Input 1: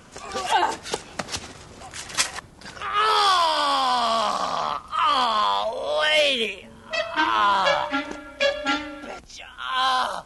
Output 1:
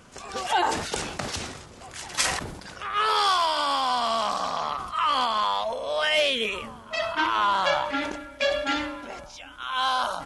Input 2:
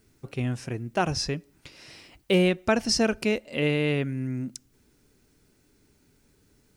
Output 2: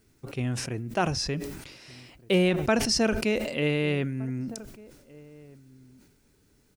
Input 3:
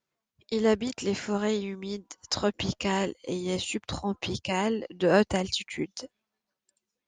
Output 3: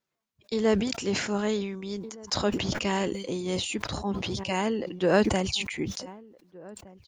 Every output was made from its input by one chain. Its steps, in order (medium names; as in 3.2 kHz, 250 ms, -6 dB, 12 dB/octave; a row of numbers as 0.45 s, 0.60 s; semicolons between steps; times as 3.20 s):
echo from a far wall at 260 m, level -22 dB; decay stretcher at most 53 dB/s; peak normalisation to -9 dBFS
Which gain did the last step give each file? -3.5 dB, -1.5 dB, -0.5 dB